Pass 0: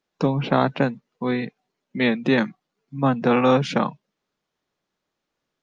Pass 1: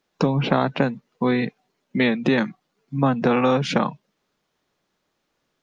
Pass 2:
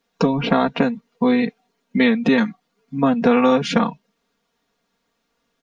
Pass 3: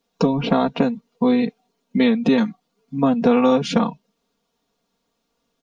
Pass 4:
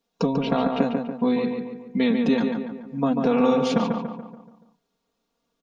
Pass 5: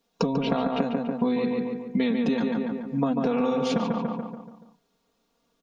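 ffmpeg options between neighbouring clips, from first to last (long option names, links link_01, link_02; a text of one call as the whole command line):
ffmpeg -i in.wav -af "acompressor=threshold=-24dB:ratio=3,volume=6.5dB" out.wav
ffmpeg -i in.wav -af "aecho=1:1:4.3:0.84" out.wav
ffmpeg -i in.wav -af "equalizer=frequency=1800:width_type=o:width=0.96:gain=-8" out.wav
ffmpeg -i in.wav -filter_complex "[0:a]asplit=2[link_01][link_02];[link_02]adelay=143,lowpass=frequency=2500:poles=1,volume=-4dB,asplit=2[link_03][link_04];[link_04]adelay=143,lowpass=frequency=2500:poles=1,volume=0.5,asplit=2[link_05][link_06];[link_06]adelay=143,lowpass=frequency=2500:poles=1,volume=0.5,asplit=2[link_07][link_08];[link_08]adelay=143,lowpass=frequency=2500:poles=1,volume=0.5,asplit=2[link_09][link_10];[link_10]adelay=143,lowpass=frequency=2500:poles=1,volume=0.5,asplit=2[link_11][link_12];[link_12]adelay=143,lowpass=frequency=2500:poles=1,volume=0.5[link_13];[link_01][link_03][link_05][link_07][link_09][link_11][link_13]amix=inputs=7:normalize=0,volume=-5dB" out.wav
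ffmpeg -i in.wav -af "acompressor=threshold=-26dB:ratio=6,volume=4.5dB" out.wav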